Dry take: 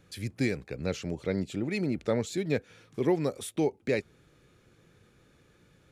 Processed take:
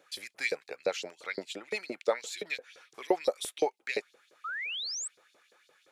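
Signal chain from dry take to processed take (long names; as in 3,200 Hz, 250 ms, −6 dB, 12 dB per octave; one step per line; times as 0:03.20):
auto-filter high-pass saw up 5.8 Hz 430–5,100 Hz
sound drawn into the spectrogram rise, 0:04.44–0:05.08, 1,200–8,300 Hz −36 dBFS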